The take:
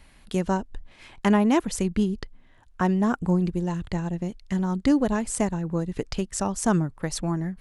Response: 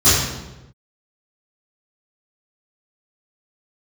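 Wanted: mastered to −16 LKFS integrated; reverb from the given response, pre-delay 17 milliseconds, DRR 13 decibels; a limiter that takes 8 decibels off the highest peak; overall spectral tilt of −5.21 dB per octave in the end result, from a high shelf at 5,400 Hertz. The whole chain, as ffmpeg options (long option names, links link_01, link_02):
-filter_complex "[0:a]highshelf=frequency=5400:gain=4.5,alimiter=limit=-15dB:level=0:latency=1,asplit=2[link_01][link_02];[1:a]atrim=start_sample=2205,adelay=17[link_03];[link_02][link_03]afir=irnorm=-1:irlink=0,volume=-36dB[link_04];[link_01][link_04]amix=inputs=2:normalize=0,volume=10.5dB"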